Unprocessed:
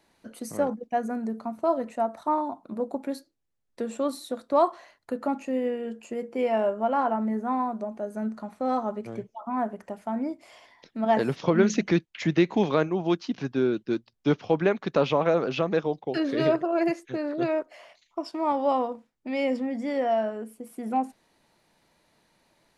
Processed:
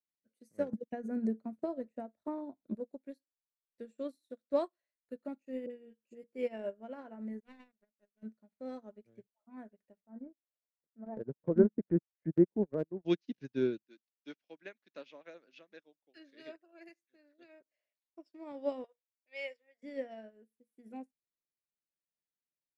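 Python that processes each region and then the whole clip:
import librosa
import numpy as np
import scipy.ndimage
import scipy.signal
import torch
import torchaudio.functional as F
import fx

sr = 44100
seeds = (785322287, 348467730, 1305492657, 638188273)

y = fx.chain(x, sr, fx.tilt_shelf(db=4.5, hz=1200.0),
    fx.band_squash(depth_pct=70), at=(0.73, 2.75))
y = fx.chain(y, sr, fx.dynamic_eq(hz=1700.0, q=0.79, threshold_db=-45.0, ratio=4.0, max_db=-4),
    fx.dispersion(late='highs', ms=42.0, hz=880.0), at=(5.66, 6.24))
y = fx.chain(y, sr, fx.high_shelf(hz=2300.0, db=9.5),
    fx.power_curve(exponent=2.0), at=(7.4, 8.23))
y = fx.chain(y, sr, fx.lowpass(hz=1400.0, slope=24),
    fx.env_lowpass_down(base_hz=980.0, full_db=-21.0),
    fx.transient(attack_db=-3, sustain_db=-12), at=(10.0, 13.05))
y = fx.chain(y, sr, fx.highpass(hz=280.0, slope=24),
    fx.peak_eq(hz=430.0, db=-12.5, octaves=1.0), at=(13.86, 17.61))
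y = fx.chain(y, sr, fx.highpass(hz=540.0, slope=24),
    fx.peak_eq(hz=2300.0, db=6.5, octaves=2.0), at=(18.84, 19.83))
y = fx.band_shelf(y, sr, hz=960.0, db=-11.5, octaves=1.1)
y = fx.notch(y, sr, hz=3100.0, q=25.0)
y = fx.upward_expand(y, sr, threshold_db=-44.0, expansion=2.5)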